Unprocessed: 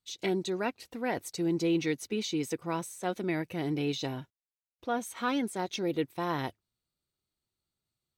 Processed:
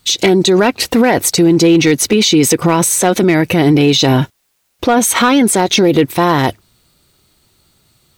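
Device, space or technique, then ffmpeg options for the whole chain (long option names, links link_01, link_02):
loud club master: -af "acompressor=threshold=-32dB:ratio=2.5,asoftclip=type=hard:threshold=-27dB,alimiter=level_in=35dB:limit=-1dB:release=50:level=0:latency=1,volume=-2.5dB"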